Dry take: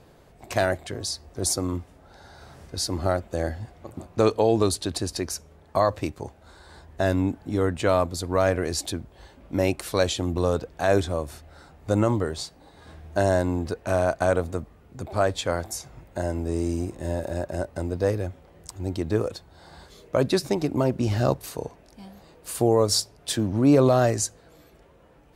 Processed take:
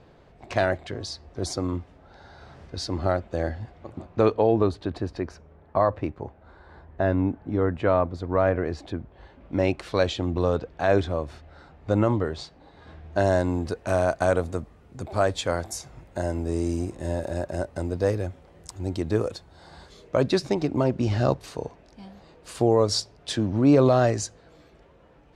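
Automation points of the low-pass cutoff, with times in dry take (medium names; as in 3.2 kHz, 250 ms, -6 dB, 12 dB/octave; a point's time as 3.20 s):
3.91 s 4.2 kHz
4.63 s 1.9 kHz
8.94 s 1.9 kHz
9.61 s 3.8 kHz
13.03 s 3.8 kHz
13.58 s 10 kHz
19.34 s 10 kHz
20.56 s 5.5 kHz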